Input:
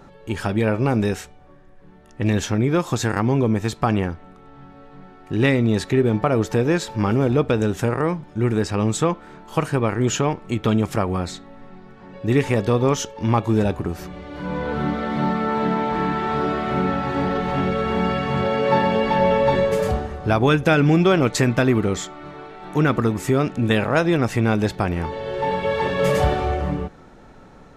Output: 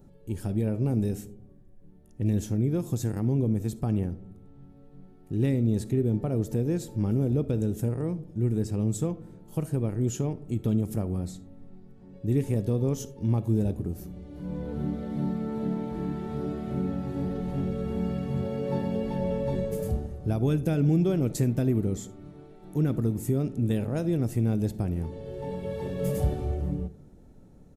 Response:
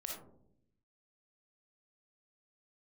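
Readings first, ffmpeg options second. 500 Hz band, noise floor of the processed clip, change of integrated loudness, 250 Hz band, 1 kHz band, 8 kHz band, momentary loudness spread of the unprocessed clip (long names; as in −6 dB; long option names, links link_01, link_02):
−11.0 dB, −52 dBFS, −8.0 dB, −6.5 dB, −20.0 dB, −10.0 dB, 9 LU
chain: -filter_complex "[0:a]firequalizer=gain_entry='entry(110,0);entry(1100,-21);entry(11000,3)':delay=0.05:min_phase=1,asplit=2[link_01][link_02];[1:a]atrim=start_sample=2205[link_03];[link_02][link_03]afir=irnorm=-1:irlink=0,volume=-12dB[link_04];[link_01][link_04]amix=inputs=2:normalize=0,volume=-5dB"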